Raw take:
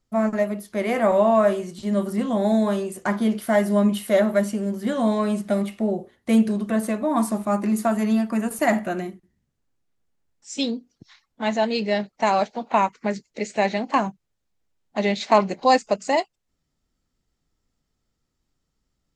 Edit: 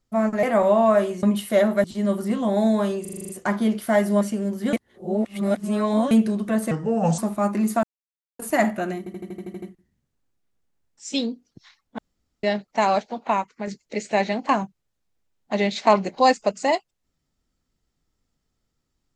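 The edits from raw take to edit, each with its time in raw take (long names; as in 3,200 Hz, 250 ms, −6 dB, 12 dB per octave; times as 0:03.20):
0:00.43–0:00.92: remove
0:02.89: stutter 0.04 s, 8 plays
0:03.81–0:04.42: move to 0:01.72
0:04.94–0:06.32: reverse
0:06.92–0:07.27: play speed 74%
0:07.92–0:08.48: silence
0:09.07: stutter 0.08 s, 9 plays
0:11.43–0:11.88: fill with room tone
0:12.41–0:13.12: fade out, to −7 dB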